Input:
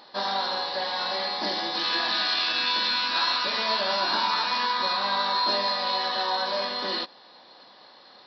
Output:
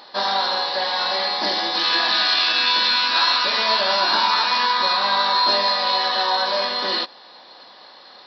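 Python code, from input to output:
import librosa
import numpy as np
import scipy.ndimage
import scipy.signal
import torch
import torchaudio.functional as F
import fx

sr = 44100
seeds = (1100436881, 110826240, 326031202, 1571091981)

y = fx.low_shelf(x, sr, hz=290.0, db=-7.5)
y = y * 10.0 ** (7.0 / 20.0)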